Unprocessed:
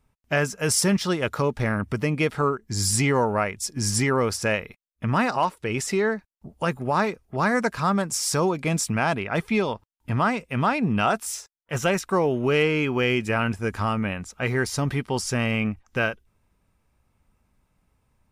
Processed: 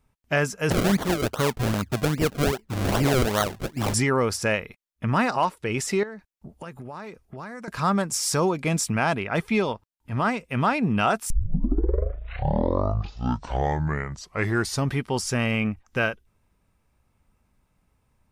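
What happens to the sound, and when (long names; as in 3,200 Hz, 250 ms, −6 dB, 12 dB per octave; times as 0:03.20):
0:00.70–0:03.94: sample-and-hold swept by an LFO 34× 2.5 Hz
0:06.03–0:07.68: downward compressor 8 to 1, threshold −34 dBFS
0:09.72–0:10.44: transient designer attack −8 dB, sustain −3 dB
0:11.30: tape start 3.63 s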